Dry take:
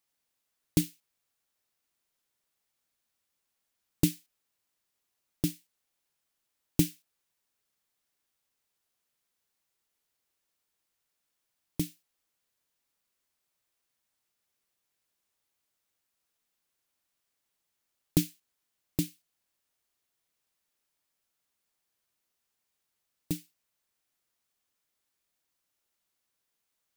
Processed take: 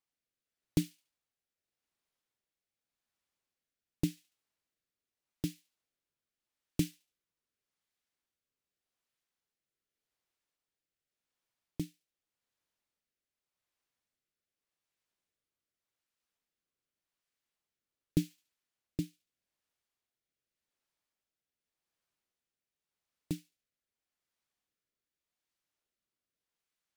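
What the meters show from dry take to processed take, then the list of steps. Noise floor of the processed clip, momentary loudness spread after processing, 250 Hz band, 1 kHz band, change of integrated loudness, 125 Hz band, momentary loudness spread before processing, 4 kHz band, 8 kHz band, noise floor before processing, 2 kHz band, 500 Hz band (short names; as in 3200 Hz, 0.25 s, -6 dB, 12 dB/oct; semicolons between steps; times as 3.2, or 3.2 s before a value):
under -85 dBFS, 10 LU, -4.5 dB, n/a, -6.0 dB, -4.5 dB, 10 LU, -7.0 dB, -10.5 dB, -82 dBFS, -6.0 dB, -5.0 dB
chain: high shelf 6700 Hz -9 dB; on a send: thin delay 71 ms, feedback 37%, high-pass 1800 Hz, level -21 dB; on the sum: rotary speaker horn 0.85 Hz; gain -3 dB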